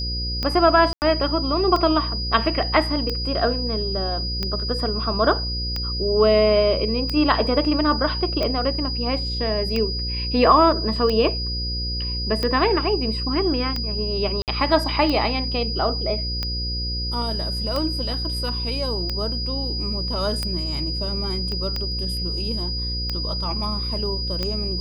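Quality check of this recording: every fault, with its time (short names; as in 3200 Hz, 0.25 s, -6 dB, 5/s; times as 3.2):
buzz 60 Hz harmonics 9 -28 dBFS
tick 45 rpm -12 dBFS
tone 4900 Hz -27 dBFS
0.93–1.02 gap 89 ms
14.42–14.48 gap 58 ms
21.52 pop -19 dBFS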